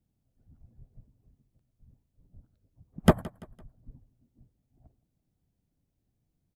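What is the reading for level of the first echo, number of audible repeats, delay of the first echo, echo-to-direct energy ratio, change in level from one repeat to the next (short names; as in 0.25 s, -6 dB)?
-21.0 dB, 2, 0.169 s, -20.0 dB, -8.0 dB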